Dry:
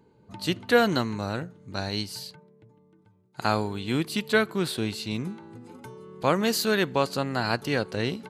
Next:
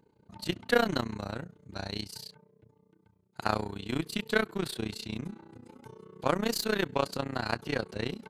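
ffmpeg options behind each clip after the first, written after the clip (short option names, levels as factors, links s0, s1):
-af "aeval=exprs='0.376*(cos(1*acos(clip(val(0)/0.376,-1,1)))-cos(1*PI/2))+0.0266*(cos(3*acos(clip(val(0)/0.376,-1,1)))-cos(3*PI/2))+0.00944*(cos(8*acos(clip(val(0)/0.376,-1,1)))-cos(8*PI/2))':c=same,tremolo=f=30:d=0.919"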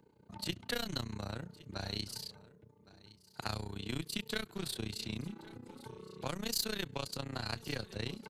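-filter_complex "[0:a]acrossover=split=130|3000[s0][s1][s2];[s1]acompressor=threshold=0.01:ratio=4[s3];[s0][s3][s2]amix=inputs=3:normalize=0,aecho=1:1:1114:0.0944"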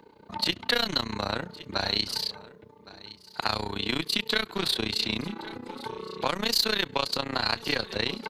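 -filter_complex "[0:a]equalizer=f=125:t=o:w=1:g=-6,equalizer=f=250:t=o:w=1:g=3,equalizer=f=500:t=o:w=1:g=4,equalizer=f=1000:t=o:w=1:g=8,equalizer=f=2000:t=o:w=1:g=6,equalizer=f=4000:t=o:w=1:g=9,equalizer=f=8000:t=o:w=1:g=-4,asplit=2[s0][s1];[s1]alimiter=limit=0.0841:level=0:latency=1:release=134,volume=1.33[s2];[s0][s2]amix=inputs=2:normalize=0"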